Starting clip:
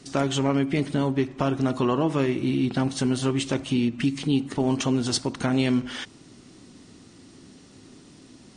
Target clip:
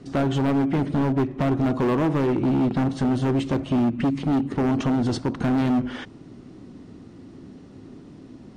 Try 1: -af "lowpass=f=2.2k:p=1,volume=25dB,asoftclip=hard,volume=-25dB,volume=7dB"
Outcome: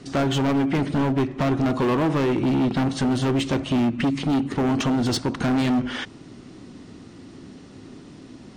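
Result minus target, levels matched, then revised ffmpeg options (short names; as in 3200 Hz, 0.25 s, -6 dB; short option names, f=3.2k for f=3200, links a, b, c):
2000 Hz band +4.0 dB
-af "lowpass=f=710:p=1,volume=25dB,asoftclip=hard,volume=-25dB,volume=7dB"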